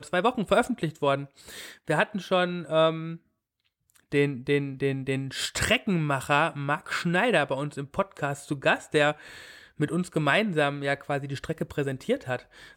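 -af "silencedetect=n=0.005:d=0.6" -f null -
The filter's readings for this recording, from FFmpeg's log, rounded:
silence_start: 3.17
silence_end: 3.90 | silence_duration: 0.73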